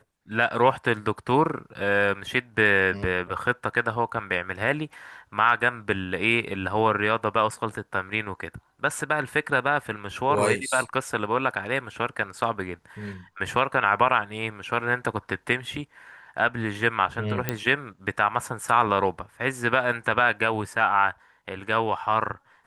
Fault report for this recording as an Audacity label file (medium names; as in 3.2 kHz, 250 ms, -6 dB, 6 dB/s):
17.490000	17.490000	pop -9 dBFS